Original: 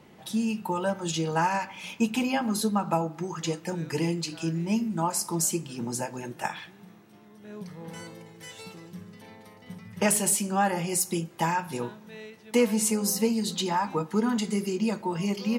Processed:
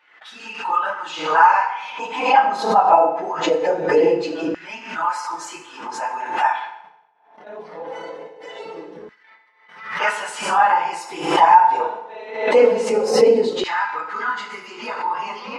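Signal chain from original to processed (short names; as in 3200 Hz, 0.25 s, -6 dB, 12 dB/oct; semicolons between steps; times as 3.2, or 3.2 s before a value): phase scrambler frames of 50 ms; gate -46 dBFS, range -35 dB; tape spacing loss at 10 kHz 31 dB; FDN reverb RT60 0.84 s, low-frequency decay 0.75×, high-frequency decay 0.9×, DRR 3.5 dB; LFO high-pass saw down 0.22 Hz 440–1700 Hz; maximiser +12 dB; backwards sustainer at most 85 dB/s; gain -1.5 dB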